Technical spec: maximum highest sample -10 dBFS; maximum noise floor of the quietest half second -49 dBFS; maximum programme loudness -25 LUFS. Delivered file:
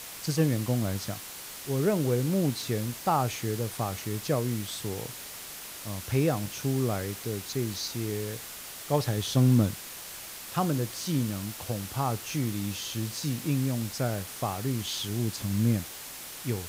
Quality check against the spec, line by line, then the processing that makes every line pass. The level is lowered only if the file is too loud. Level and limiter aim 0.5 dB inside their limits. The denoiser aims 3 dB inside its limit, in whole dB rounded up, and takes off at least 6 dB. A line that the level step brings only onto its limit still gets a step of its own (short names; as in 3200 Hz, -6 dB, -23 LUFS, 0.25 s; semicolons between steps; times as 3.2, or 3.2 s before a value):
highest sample -12.0 dBFS: OK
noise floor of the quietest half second -42 dBFS: fail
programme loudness -30.0 LUFS: OK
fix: denoiser 10 dB, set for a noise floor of -42 dBFS